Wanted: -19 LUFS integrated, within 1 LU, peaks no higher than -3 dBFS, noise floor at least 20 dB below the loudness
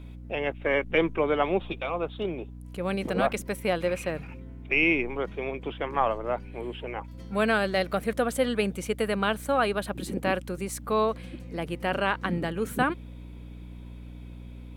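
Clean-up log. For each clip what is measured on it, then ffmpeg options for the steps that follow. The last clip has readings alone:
hum 60 Hz; harmonics up to 300 Hz; hum level -39 dBFS; loudness -28.0 LUFS; peak -10.5 dBFS; loudness target -19.0 LUFS
-> -af "bandreject=f=60:t=h:w=6,bandreject=f=120:t=h:w=6,bandreject=f=180:t=h:w=6,bandreject=f=240:t=h:w=6,bandreject=f=300:t=h:w=6"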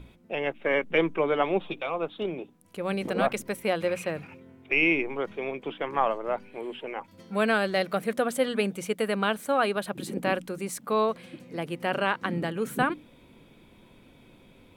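hum none; loudness -28.5 LUFS; peak -10.5 dBFS; loudness target -19.0 LUFS
-> -af "volume=9.5dB,alimiter=limit=-3dB:level=0:latency=1"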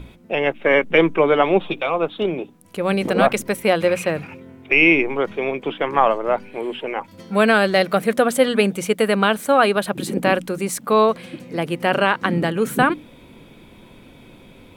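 loudness -19.0 LUFS; peak -3.0 dBFS; noise floor -46 dBFS

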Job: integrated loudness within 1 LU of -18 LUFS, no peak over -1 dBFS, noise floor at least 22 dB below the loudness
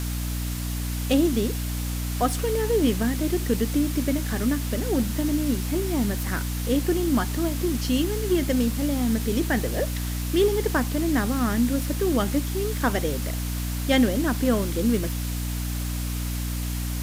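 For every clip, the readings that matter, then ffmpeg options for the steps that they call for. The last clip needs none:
hum 60 Hz; harmonics up to 300 Hz; hum level -26 dBFS; noise floor -28 dBFS; noise floor target -47 dBFS; loudness -25.0 LUFS; peak -9.0 dBFS; loudness target -18.0 LUFS
-> -af "bandreject=f=60:t=h:w=4,bandreject=f=120:t=h:w=4,bandreject=f=180:t=h:w=4,bandreject=f=240:t=h:w=4,bandreject=f=300:t=h:w=4"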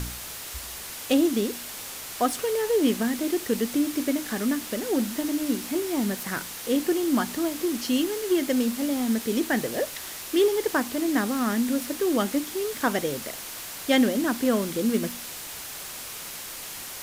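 hum none; noise floor -38 dBFS; noise floor target -49 dBFS
-> -af "afftdn=nr=11:nf=-38"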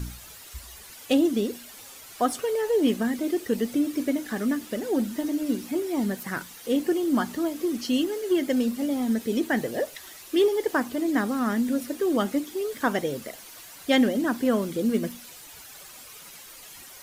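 noise floor -46 dBFS; noise floor target -48 dBFS
-> -af "afftdn=nr=6:nf=-46"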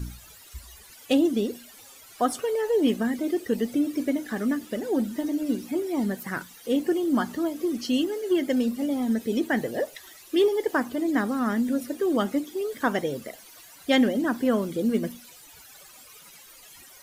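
noise floor -50 dBFS; loudness -26.0 LUFS; peak -10.0 dBFS; loudness target -18.0 LUFS
-> -af "volume=8dB"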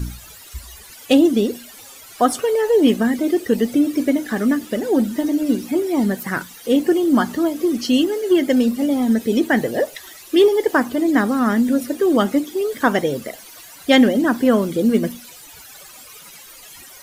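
loudness -18.0 LUFS; peak -2.0 dBFS; noise floor -42 dBFS

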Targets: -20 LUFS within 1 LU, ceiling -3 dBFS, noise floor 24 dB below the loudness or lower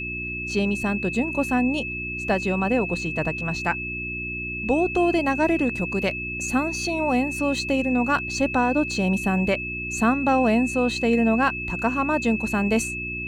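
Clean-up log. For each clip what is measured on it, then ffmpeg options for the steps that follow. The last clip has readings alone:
hum 60 Hz; harmonics up to 360 Hz; hum level -33 dBFS; steady tone 2600 Hz; tone level -29 dBFS; loudness -23.0 LUFS; peak -9.0 dBFS; loudness target -20.0 LUFS
-> -af "bandreject=f=60:t=h:w=4,bandreject=f=120:t=h:w=4,bandreject=f=180:t=h:w=4,bandreject=f=240:t=h:w=4,bandreject=f=300:t=h:w=4,bandreject=f=360:t=h:w=4"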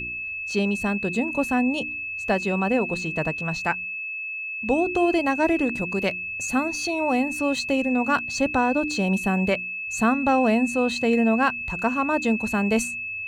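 hum none; steady tone 2600 Hz; tone level -29 dBFS
-> -af "bandreject=f=2.6k:w=30"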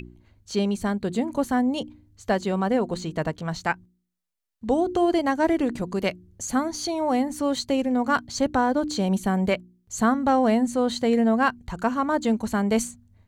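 steady tone none; loudness -24.5 LUFS; peak -9.5 dBFS; loudness target -20.0 LUFS
-> -af "volume=4.5dB"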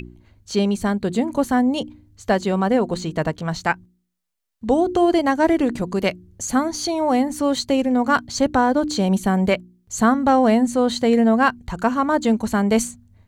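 loudness -20.0 LUFS; peak -5.0 dBFS; noise floor -64 dBFS

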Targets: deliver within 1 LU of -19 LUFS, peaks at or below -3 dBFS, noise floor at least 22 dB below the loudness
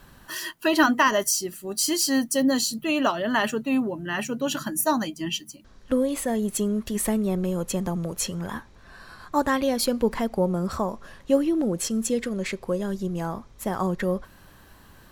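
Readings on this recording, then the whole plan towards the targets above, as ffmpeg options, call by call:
loudness -25.5 LUFS; peak -7.5 dBFS; loudness target -19.0 LUFS
-> -af "volume=6.5dB,alimiter=limit=-3dB:level=0:latency=1"

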